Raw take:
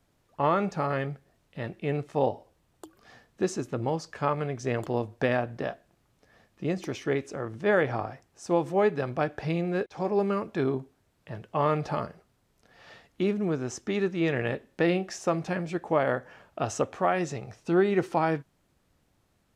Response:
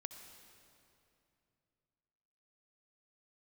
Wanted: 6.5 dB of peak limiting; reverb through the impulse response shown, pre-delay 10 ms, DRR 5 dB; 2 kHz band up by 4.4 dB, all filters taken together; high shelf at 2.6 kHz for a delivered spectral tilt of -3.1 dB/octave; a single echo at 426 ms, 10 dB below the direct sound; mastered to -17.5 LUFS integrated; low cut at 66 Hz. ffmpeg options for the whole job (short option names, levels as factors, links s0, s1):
-filter_complex "[0:a]highpass=66,equalizer=f=2000:t=o:g=8.5,highshelf=f=2600:g=-7.5,alimiter=limit=0.168:level=0:latency=1,aecho=1:1:426:0.316,asplit=2[s0][s1];[1:a]atrim=start_sample=2205,adelay=10[s2];[s1][s2]afir=irnorm=-1:irlink=0,volume=0.841[s3];[s0][s3]amix=inputs=2:normalize=0,volume=3.55"